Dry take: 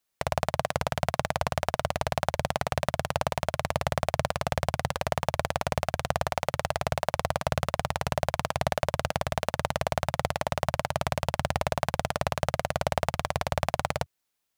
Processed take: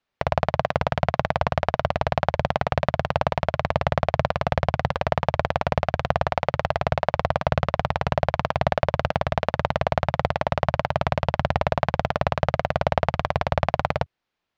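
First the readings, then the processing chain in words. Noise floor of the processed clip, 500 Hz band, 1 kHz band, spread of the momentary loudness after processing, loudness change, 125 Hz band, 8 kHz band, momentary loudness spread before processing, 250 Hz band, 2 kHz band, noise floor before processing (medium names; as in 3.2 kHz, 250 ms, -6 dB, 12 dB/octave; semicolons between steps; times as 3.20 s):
-67 dBFS, +6.0 dB, +5.5 dB, 2 LU, +5.5 dB, +6.5 dB, under -10 dB, 2 LU, +6.5 dB, +4.5 dB, -73 dBFS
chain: distance through air 230 m; trim +6.5 dB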